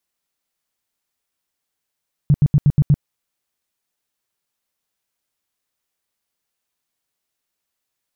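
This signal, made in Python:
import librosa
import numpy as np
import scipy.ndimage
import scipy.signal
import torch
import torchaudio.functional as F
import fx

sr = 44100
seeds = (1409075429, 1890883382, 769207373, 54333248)

y = fx.tone_burst(sr, hz=145.0, cycles=6, every_s=0.12, bursts=6, level_db=-8.5)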